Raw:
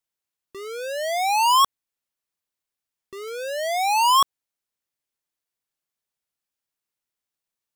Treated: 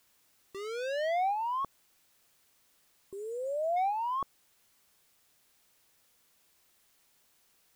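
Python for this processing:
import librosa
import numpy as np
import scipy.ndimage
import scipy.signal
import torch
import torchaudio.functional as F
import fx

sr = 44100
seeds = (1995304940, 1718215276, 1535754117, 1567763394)

y = fx.env_lowpass_down(x, sr, base_hz=560.0, full_db=-20.0)
y = fx.spec_erase(y, sr, start_s=3.12, length_s=0.65, low_hz=1100.0, high_hz=6900.0)
y = fx.dmg_noise_colour(y, sr, seeds[0], colour='white', level_db=-64.0)
y = F.gain(torch.from_numpy(y), -4.5).numpy()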